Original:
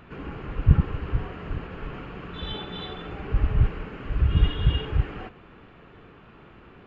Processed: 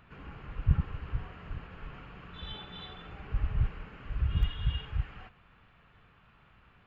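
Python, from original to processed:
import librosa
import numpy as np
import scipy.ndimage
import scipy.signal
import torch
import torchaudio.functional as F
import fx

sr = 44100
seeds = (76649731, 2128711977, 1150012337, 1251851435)

y = fx.peak_eq(x, sr, hz=350.0, db=fx.steps((0.0, -8.5), (4.43, -15.0)), octaves=1.5)
y = y * librosa.db_to_amplitude(-7.5)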